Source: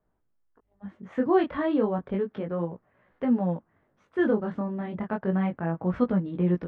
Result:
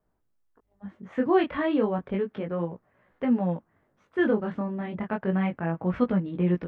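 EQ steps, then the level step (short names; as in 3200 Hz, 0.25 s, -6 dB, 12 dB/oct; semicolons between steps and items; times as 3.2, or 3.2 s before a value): dynamic EQ 2500 Hz, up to +7 dB, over -53 dBFS, Q 1.6; 0.0 dB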